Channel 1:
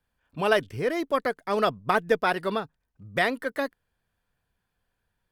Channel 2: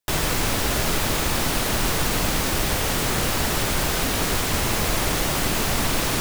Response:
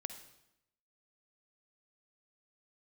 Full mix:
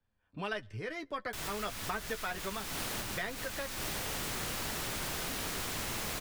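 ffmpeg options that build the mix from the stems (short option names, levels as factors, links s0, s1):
-filter_complex "[0:a]lowpass=7100,lowshelf=f=450:g=6.5,flanger=delay=9:depth=1.4:regen=26:speed=1.4:shape=triangular,volume=0.631,asplit=3[s0][s1][s2];[s1]volume=0.0891[s3];[1:a]adelay=1250,volume=0.237,asplit=2[s4][s5];[s5]volume=0.668[s6];[s2]apad=whole_len=328827[s7];[s4][s7]sidechaincompress=threshold=0.00355:ratio=8:attack=16:release=158[s8];[2:a]atrim=start_sample=2205[s9];[s3][s6]amix=inputs=2:normalize=0[s10];[s10][s9]afir=irnorm=-1:irlink=0[s11];[s0][s8][s11]amix=inputs=3:normalize=0,acrossover=split=94|1100[s12][s13][s14];[s12]acompressor=threshold=0.00447:ratio=4[s15];[s13]acompressor=threshold=0.00794:ratio=4[s16];[s14]acompressor=threshold=0.0158:ratio=4[s17];[s15][s16][s17]amix=inputs=3:normalize=0"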